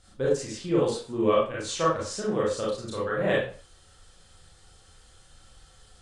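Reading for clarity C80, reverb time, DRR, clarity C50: 7.5 dB, 0.45 s, -6.5 dB, 2.0 dB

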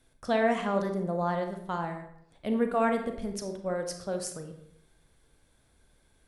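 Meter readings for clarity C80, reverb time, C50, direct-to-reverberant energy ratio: 10.5 dB, 0.75 s, 7.5 dB, 5.0 dB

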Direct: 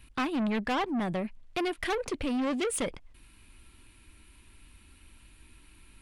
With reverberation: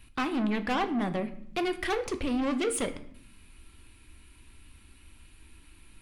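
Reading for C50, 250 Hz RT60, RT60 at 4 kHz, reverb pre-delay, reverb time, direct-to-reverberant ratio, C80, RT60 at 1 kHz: 13.5 dB, 1.2 s, 0.50 s, 3 ms, 0.65 s, 8.0 dB, 16.5 dB, 0.60 s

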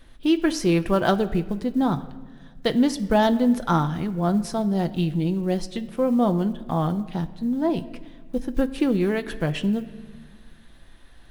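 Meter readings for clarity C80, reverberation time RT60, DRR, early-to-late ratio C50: 16.5 dB, 1.5 s, 8.0 dB, 15.5 dB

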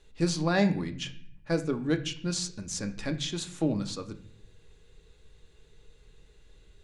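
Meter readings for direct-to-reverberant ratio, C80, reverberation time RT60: 6.5 dB, 17.0 dB, 0.55 s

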